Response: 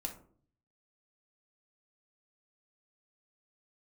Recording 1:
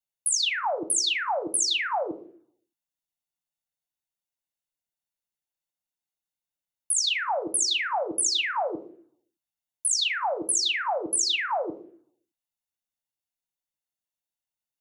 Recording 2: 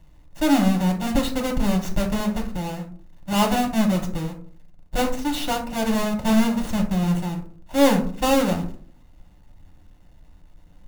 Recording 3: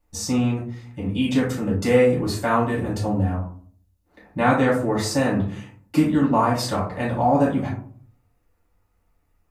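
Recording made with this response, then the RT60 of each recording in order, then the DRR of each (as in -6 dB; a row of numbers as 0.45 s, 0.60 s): 2; 0.50 s, 0.50 s, 0.50 s; 8.0 dB, 2.0 dB, -7.5 dB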